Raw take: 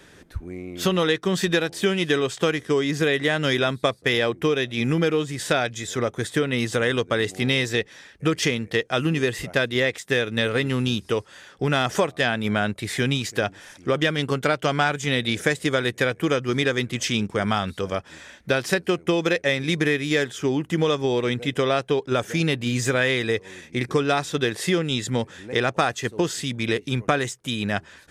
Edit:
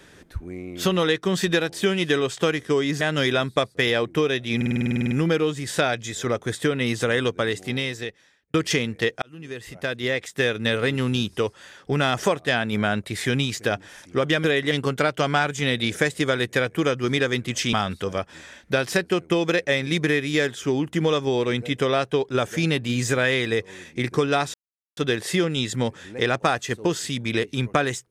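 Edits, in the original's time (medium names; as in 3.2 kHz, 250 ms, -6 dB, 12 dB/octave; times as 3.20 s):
3.01–3.28 s: move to 14.16 s
4.83 s: stutter 0.05 s, 12 plays
6.99–8.26 s: fade out
8.94–10.17 s: fade in
17.18–17.50 s: delete
24.31 s: insert silence 0.43 s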